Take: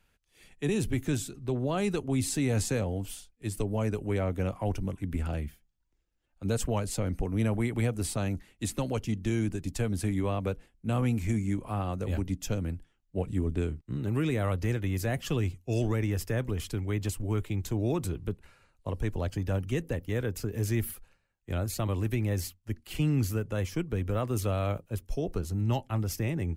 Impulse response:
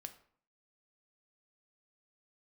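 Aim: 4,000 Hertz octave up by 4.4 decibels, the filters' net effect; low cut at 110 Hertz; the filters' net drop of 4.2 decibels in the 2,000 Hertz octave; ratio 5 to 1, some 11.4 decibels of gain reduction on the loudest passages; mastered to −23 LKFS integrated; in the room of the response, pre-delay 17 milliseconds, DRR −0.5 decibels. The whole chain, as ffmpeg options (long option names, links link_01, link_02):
-filter_complex "[0:a]highpass=110,equalizer=frequency=2000:width_type=o:gain=-8,equalizer=frequency=4000:width_type=o:gain=8,acompressor=threshold=-38dB:ratio=5,asplit=2[link_01][link_02];[1:a]atrim=start_sample=2205,adelay=17[link_03];[link_02][link_03]afir=irnorm=-1:irlink=0,volume=5.5dB[link_04];[link_01][link_04]amix=inputs=2:normalize=0,volume=15.5dB"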